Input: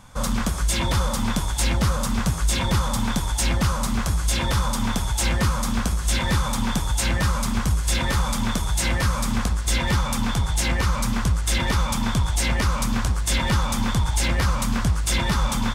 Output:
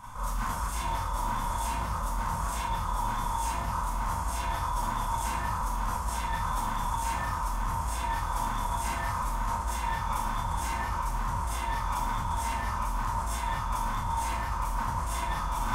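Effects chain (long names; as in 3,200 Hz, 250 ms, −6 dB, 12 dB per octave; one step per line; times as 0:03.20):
brickwall limiter −22.5 dBFS, peak gain reduction 11 dB
graphic EQ with 10 bands 125 Hz −3 dB, 250 Hz −8 dB, 500 Hz −9 dB, 1,000 Hz +5 dB, 2,000 Hz −3 dB, 4,000 Hz −9 dB, 8,000 Hz −4 dB
on a send: delay with a band-pass on its return 347 ms, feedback 73%, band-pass 510 Hz, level −3 dB
on the sum: four-comb reverb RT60 0.6 s, combs from 25 ms, DRR −9 dB
reversed playback
downward compressor 6 to 1, threshold −29 dBFS, peak gain reduction 12 dB
reversed playback
parametric band 990 Hz +7.5 dB 0.22 octaves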